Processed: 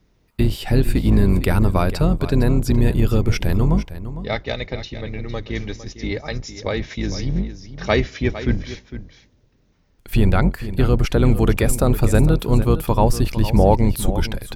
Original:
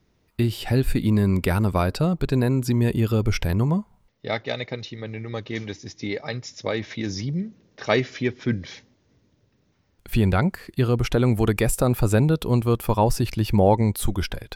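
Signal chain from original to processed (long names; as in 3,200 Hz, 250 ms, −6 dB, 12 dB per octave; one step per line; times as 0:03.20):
sub-octave generator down 2 octaves, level +1 dB
single-tap delay 456 ms −13 dB
level +2 dB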